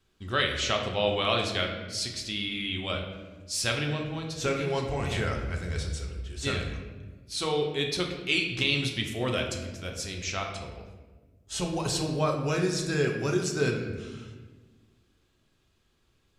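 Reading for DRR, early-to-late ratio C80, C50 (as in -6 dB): 1.0 dB, 7.0 dB, 5.5 dB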